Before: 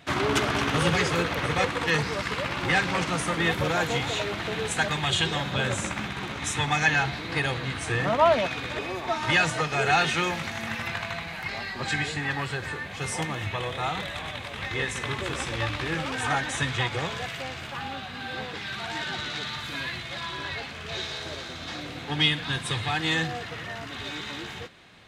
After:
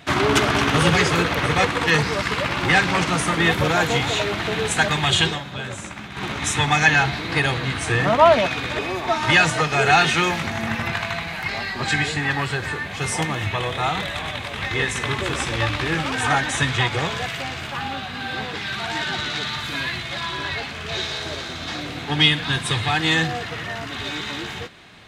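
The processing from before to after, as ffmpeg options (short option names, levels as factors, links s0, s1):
-filter_complex "[0:a]asettb=1/sr,asplit=3[s0][s1][s2];[s0]atrim=end=10.434[s3];[s1]atrim=start=10.43:end=10.93,asetpts=PTS-STARTPTS,afade=t=in:d=0.004:c=qsin,afade=t=out:st=0.496:d=0.004:c=qsin,tiltshelf=f=1300:g=3.5[s4];[s2]atrim=start=10.926[s5];[s3][s4]acrossfade=d=0.004:c1=hsin:c2=qsin[s6];[s6][s5]acrossfade=d=0.004:c1=qsin:c2=hsin,asplit=3[s7][s8][s9];[s7]atrim=end=5.4,asetpts=PTS-STARTPTS,afade=t=out:st=5.26:d=0.14:silence=0.316228[s10];[s8]atrim=start=5.4:end=6.11,asetpts=PTS-STARTPTS,volume=0.316[s11];[s9]atrim=start=6.11,asetpts=PTS-STARTPTS,afade=t=in:d=0.14:silence=0.316228[s12];[s10][s11][s12]concat=n=3:v=0:a=1,bandreject=f=520:w=15,volume=2.11"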